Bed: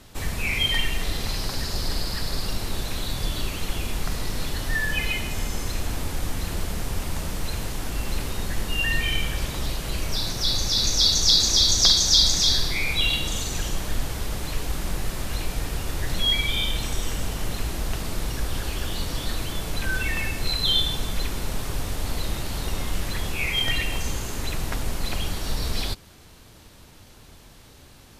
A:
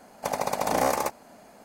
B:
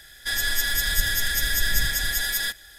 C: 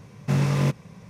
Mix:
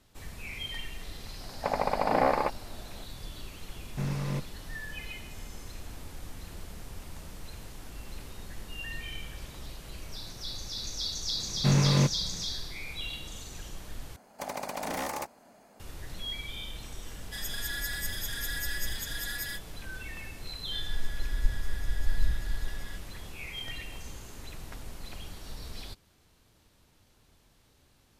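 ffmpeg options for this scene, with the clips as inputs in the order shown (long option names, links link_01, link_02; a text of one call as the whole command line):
ffmpeg -i bed.wav -i cue0.wav -i cue1.wav -i cue2.wav -filter_complex "[1:a]asplit=2[link_01][link_02];[3:a]asplit=2[link_03][link_04];[2:a]asplit=2[link_05][link_06];[0:a]volume=-15dB[link_07];[link_01]lowpass=frequency=2800:width=0.5412,lowpass=frequency=2800:width=1.3066[link_08];[link_02]aeval=exprs='0.0944*(abs(mod(val(0)/0.0944+3,4)-2)-1)':channel_layout=same[link_09];[link_05]asplit=2[link_10][link_11];[link_11]adelay=3.7,afreqshift=1.3[link_12];[link_10][link_12]amix=inputs=2:normalize=1[link_13];[link_06]aemphasis=mode=reproduction:type=riaa[link_14];[link_07]asplit=2[link_15][link_16];[link_15]atrim=end=14.164[link_17];[link_09]atrim=end=1.64,asetpts=PTS-STARTPTS,volume=-6.5dB[link_18];[link_16]atrim=start=15.796[link_19];[link_08]atrim=end=1.64,asetpts=PTS-STARTPTS,volume=-0.5dB,afade=type=in:duration=0.004:curve=hsin,afade=type=out:start_time=1.636:duration=0.004:curve=hsin,adelay=1400[link_20];[link_03]atrim=end=1.09,asetpts=PTS-STARTPTS,volume=-10.5dB,afade=type=in:duration=0.004:curve=hsin,afade=type=out:start_time=1.086:duration=0.004:curve=hsin,adelay=162729S[link_21];[link_04]atrim=end=1.09,asetpts=PTS-STARTPTS,volume=-1.5dB,afade=type=in:duration=0.004:curve=hsin,afade=type=out:start_time=1.086:duration=0.004:curve=hsin,adelay=11360[link_22];[link_13]atrim=end=2.78,asetpts=PTS-STARTPTS,volume=-8.5dB,afade=type=in:duration=0.004:curve=hsin,afade=type=out:start_time=2.776:duration=0.004:curve=hsin,adelay=17060[link_23];[link_14]atrim=end=2.78,asetpts=PTS-STARTPTS,volume=-18dB,afade=type=in:duration=0.004:curve=hsin,afade=type=out:start_time=2.776:duration=0.004:curve=hsin,adelay=20460[link_24];[link_17][link_18]acrossfade=duration=0.004:curve1=hsin:curve2=hsin[link_25];[link_25][link_19]acrossfade=duration=0.004:curve1=hsin:curve2=hsin[link_26];[link_26][link_20][link_21][link_22][link_23][link_24]amix=inputs=6:normalize=0" out.wav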